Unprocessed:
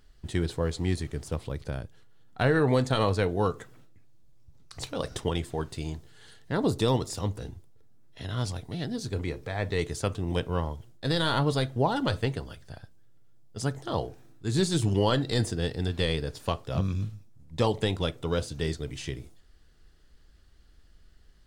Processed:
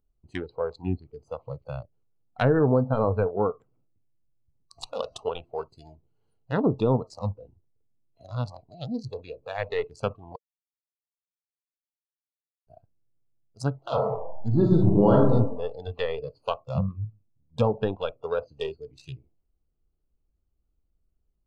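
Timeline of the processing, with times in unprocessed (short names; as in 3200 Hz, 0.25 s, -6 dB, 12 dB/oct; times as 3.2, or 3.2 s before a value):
10.36–12.67 mute
13.82–15.32 reverb throw, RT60 1.1 s, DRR -2 dB
whole clip: Wiener smoothing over 25 samples; treble ducked by the level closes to 1000 Hz, closed at -21 dBFS; spectral noise reduction 20 dB; gain +3.5 dB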